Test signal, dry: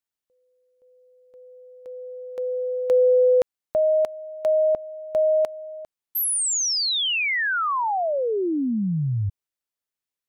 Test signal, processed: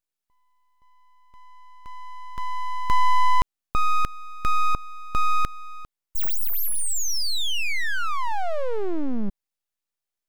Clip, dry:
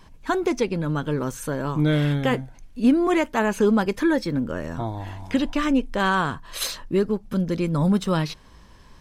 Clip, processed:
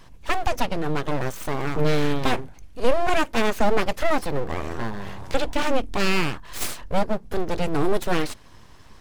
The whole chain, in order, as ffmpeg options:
ffmpeg -i in.wav -af "aeval=exprs='abs(val(0))':channel_layout=same,volume=2.5dB" out.wav

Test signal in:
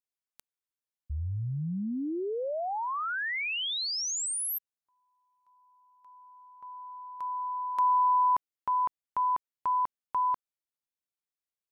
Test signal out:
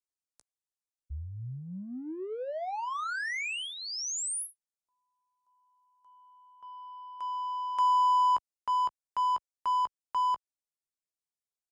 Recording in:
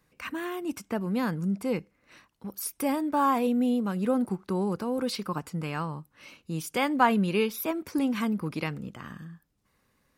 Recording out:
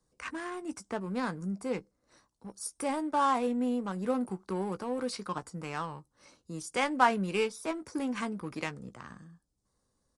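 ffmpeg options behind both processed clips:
ffmpeg -i in.wav -filter_complex "[0:a]equalizer=frequency=170:width_type=o:width=2.6:gain=-7,acrossover=split=120|4100[link_01][link_02][link_03];[link_02]adynamicsmooth=sensitivity=8:basefreq=870[link_04];[link_01][link_04][link_03]amix=inputs=3:normalize=0,asplit=2[link_05][link_06];[link_06]adelay=16,volume=-12dB[link_07];[link_05][link_07]amix=inputs=2:normalize=0,aresample=22050,aresample=44100,volume=-1dB" out.wav

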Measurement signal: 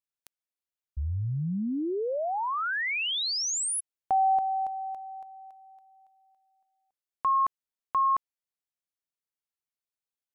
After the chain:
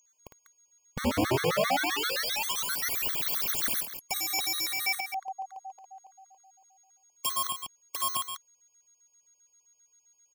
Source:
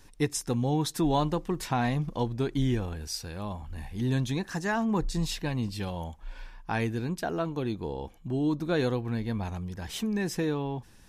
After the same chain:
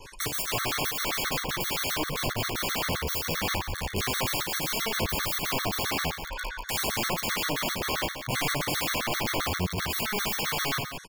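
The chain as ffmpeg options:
ffmpeg -i in.wav -filter_complex "[0:a]highshelf=frequency=3200:gain=11,aecho=1:1:2:0.43,asplit=2[link_01][link_02];[link_02]highpass=frequency=720:poles=1,volume=16dB,asoftclip=type=tanh:threshold=-8.5dB[link_03];[link_01][link_03]amix=inputs=2:normalize=0,lowpass=frequency=1200:poles=1,volume=-6dB,acompressor=threshold=-25dB:ratio=5:attack=16:release=77:knee=1:detection=peak,aeval=exprs='(mod(33.5*val(0)+1,2)-1)/33.5':channel_layout=same,adynamicequalizer=threshold=0.002:dfrequency=8600:dqfactor=1.3:tfrequency=8600:tqfactor=1.3:attack=5:release=100:ratio=0.375:range=3.5:mode=cutabove:tftype=bell,aeval=exprs='val(0)+0.000794*sin(2*PI*6600*n/s)':channel_layout=same,aecho=1:1:55.39|195.3:0.631|0.398,afftfilt=real='re*gt(sin(2*PI*7.6*pts/sr)*(1-2*mod(floor(b*sr/1024/1100),2)),0)':imag='im*gt(sin(2*PI*7.6*pts/sr)*(1-2*mod(floor(b*sr/1024/1100),2)),0)':win_size=1024:overlap=0.75,volume=8.5dB" out.wav

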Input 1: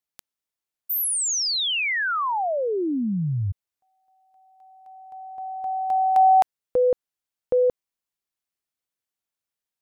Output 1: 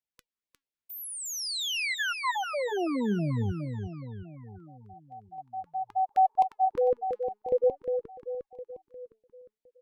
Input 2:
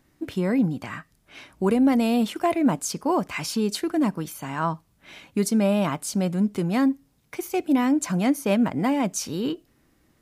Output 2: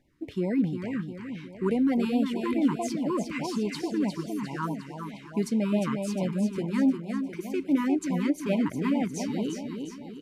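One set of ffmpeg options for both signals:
ffmpeg -i in.wav -filter_complex "[0:a]asplit=2[link_01][link_02];[link_02]aecho=0:1:355|710|1065|1420|1775|2130|2485:0.501|0.266|0.141|0.0746|0.0395|0.021|0.0111[link_03];[link_01][link_03]amix=inputs=2:normalize=0,flanger=delay=1.7:depth=3.1:regen=88:speed=0.48:shape=sinusoidal,lowpass=frequency=3200:poles=1,afftfilt=real='re*(1-between(b*sr/1024,580*pow(1500/580,0.5+0.5*sin(2*PI*4.7*pts/sr))/1.41,580*pow(1500/580,0.5+0.5*sin(2*PI*4.7*pts/sr))*1.41))':imag='im*(1-between(b*sr/1024,580*pow(1500/580,0.5+0.5*sin(2*PI*4.7*pts/sr))/1.41,580*pow(1500/580,0.5+0.5*sin(2*PI*4.7*pts/sr))*1.41))':win_size=1024:overlap=0.75" out.wav

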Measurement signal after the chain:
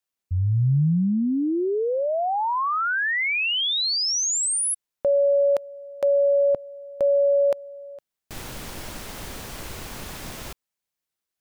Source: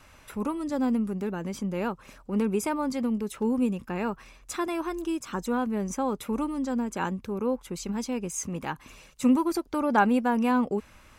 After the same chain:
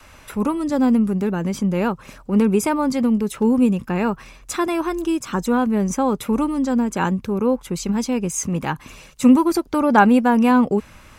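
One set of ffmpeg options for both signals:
ffmpeg -i in.wav -af "adynamicequalizer=threshold=0.00631:dfrequency=140:dqfactor=1.4:tfrequency=140:tqfactor=1.4:attack=5:release=100:ratio=0.375:range=2.5:mode=boostabove:tftype=bell,volume=8dB" out.wav

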